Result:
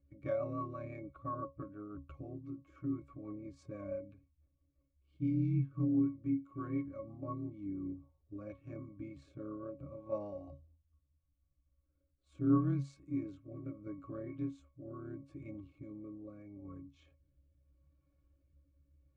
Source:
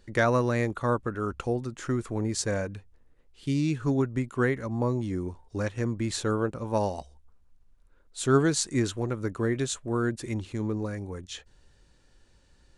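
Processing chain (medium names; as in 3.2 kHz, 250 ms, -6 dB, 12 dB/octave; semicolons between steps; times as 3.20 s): granular stretch 1.5×, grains 58 ms; pitch-class resonator C#, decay 0.24 s; rotary cabinet horn 6 Hz, later 0.75 Hz, at 7.53 s; trim +5.5 dB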